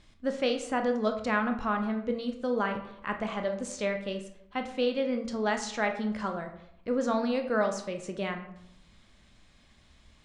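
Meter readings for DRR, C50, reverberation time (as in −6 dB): 5.0 dB, 9.0 dB, 0.75 s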